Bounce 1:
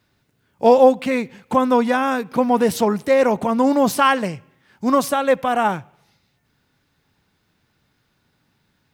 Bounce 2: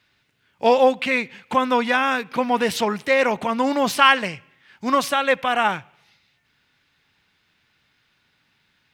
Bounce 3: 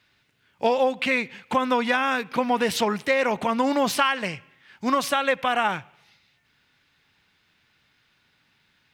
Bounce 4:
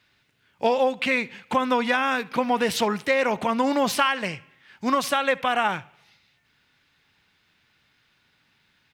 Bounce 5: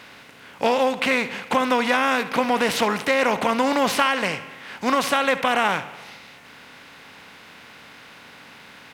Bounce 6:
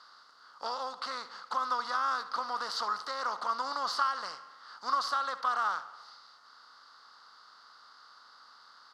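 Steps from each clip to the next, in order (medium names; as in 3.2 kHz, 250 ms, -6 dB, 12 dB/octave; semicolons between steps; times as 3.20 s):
peaking EQ 2.6 kHz +14 dB 2.3 oct; trim -6.5 dB
compression 12:1, threshold -17 dBFS, peak gain reduction 9.5 dB
delay 71 ms -24 dB
spectral levelling over time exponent 0.6; trim -1 dB
two resonant band-passes 2.4 kHz, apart 1.9 oct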